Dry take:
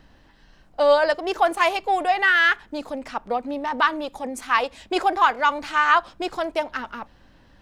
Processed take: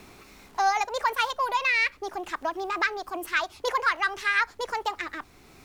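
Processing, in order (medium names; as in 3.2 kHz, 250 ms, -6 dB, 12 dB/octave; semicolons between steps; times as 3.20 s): bit crusher 10-bit; speed mistake 33 rpm record played at 45 rpm; three bands compressed up and down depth 40%; trim -5.5 dB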